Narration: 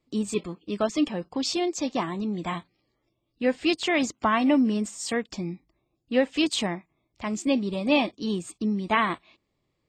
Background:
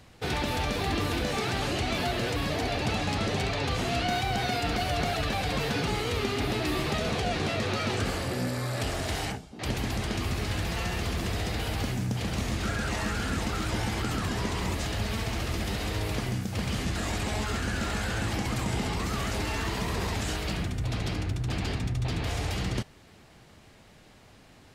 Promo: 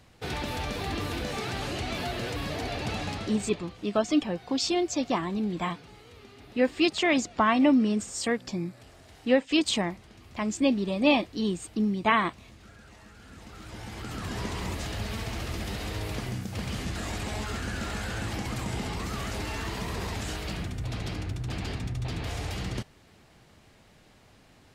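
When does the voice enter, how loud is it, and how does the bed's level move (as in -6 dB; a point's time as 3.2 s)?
3.15 s, 0.0 dB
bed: 3.07 s -3.5 dB
3.79 s -21.5 dB
13.14 s -21.5 dB
14.38 s -3 dB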